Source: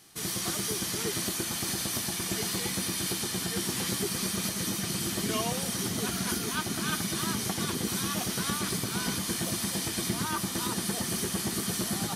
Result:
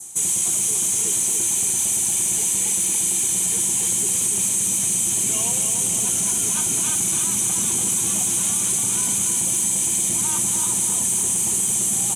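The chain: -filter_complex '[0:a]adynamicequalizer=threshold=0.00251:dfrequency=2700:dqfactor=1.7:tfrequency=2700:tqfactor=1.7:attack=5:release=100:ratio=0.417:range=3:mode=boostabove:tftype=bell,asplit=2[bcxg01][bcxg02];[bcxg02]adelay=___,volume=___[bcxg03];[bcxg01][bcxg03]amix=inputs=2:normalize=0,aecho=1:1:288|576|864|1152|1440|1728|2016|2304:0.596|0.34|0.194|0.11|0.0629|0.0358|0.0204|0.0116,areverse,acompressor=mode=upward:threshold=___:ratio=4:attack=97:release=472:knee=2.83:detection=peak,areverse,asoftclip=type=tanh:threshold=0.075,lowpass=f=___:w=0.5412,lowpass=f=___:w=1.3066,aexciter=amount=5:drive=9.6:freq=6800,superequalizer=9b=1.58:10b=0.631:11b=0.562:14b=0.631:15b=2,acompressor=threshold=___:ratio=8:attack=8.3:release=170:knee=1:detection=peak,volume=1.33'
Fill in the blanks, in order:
35, 0.224, 0.0158, 9400, 9400, 0.1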